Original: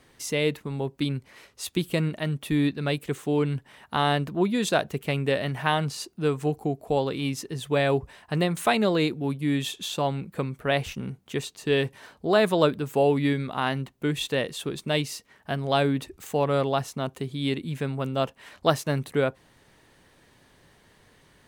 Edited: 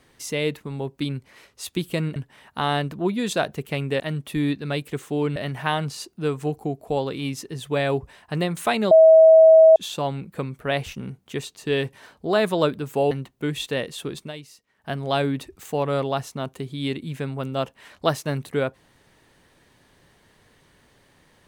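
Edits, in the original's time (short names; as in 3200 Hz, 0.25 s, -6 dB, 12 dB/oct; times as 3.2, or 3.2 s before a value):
2.16–3.52 move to 5.36
8.91–9.76 bleep 643 Hz -7.5 dBFS
13.11–13.72 cut
14.8–15.5 dip -13 dB, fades 0.14 s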